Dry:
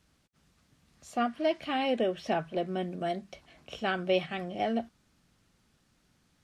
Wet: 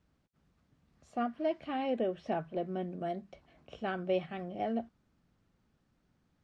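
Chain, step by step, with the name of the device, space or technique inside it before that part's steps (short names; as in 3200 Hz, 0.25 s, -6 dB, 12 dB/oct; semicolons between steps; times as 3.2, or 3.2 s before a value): through cloth (LPF 8700 Hz 12 dB/oct; high shelf 2000 Hz -12.5 dB); gain -3 dB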